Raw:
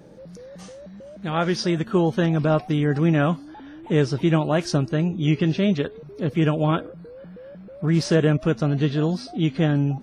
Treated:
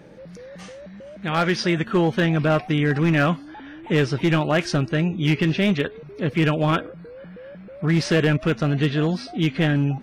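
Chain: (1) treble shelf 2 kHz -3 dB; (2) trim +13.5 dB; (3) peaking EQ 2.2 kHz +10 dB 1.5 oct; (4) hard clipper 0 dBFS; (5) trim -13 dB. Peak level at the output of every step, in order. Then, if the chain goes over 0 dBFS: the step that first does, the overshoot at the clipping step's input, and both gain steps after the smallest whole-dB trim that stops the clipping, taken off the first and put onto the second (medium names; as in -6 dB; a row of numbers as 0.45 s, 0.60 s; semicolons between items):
-7.5 dBFS, +6.0 dBFS, +7.5 dBFS, 0.0 dBFS, -13.0 dBFS; step 2, 7.5 dB; step 2 +5.5 dB, step 5 -5 dB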